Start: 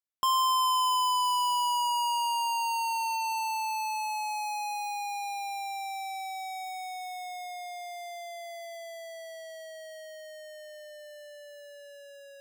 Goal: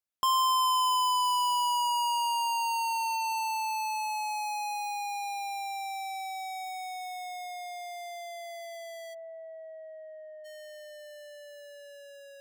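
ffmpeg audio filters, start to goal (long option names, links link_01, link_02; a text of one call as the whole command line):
ffmpeg -i in.wav -filter_complex "[0:a]asplit=3[link_01][link_02][link_03];[link_01]afade=type=out:start_time=9.13:duration=0.02[link_04];[link_02]asuperpass=centerf=730:order=8:qfactor=0.63,afade=type=in:start_time=9.13:duration=0.02,afade=type=out:start_time=10.44:duration=0.02[link_05];[link_03]afade=type=in:start_time=10.44:duration=0.02[link_06];[link_04][link_05][link_06]amix=inputs=3:normalize=0" out.wav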